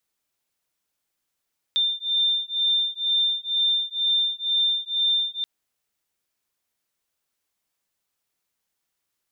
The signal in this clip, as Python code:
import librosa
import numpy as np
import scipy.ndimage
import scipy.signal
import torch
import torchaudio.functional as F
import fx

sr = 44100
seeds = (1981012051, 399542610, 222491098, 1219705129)

y = fx.two_tone_beats(sr, length_s=3.68, hz=3590.0, beat_hz=2.1, level_db=-23.5)